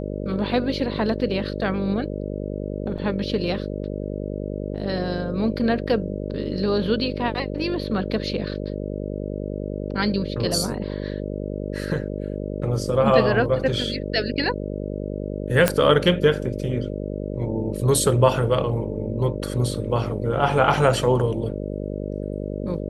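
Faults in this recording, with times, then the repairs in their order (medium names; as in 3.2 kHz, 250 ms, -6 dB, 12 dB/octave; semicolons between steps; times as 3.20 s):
buzz 50 Hz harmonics 12 -29 dBFS
2.98–2.99 s: dropout 5.2 ms
15.68 s: pop -2 dBFS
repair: de-click; de-hum 50 Hz, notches 12; interpolate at 2.98 s, 5.2 ms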